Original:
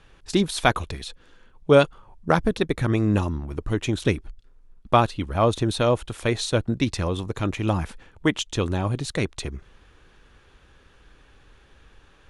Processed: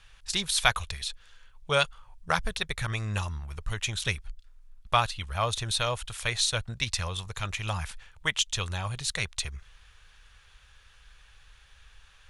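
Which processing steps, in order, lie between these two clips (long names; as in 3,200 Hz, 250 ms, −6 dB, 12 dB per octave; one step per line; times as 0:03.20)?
guitar amp tone stack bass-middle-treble 10-0-10
level +4.5 dB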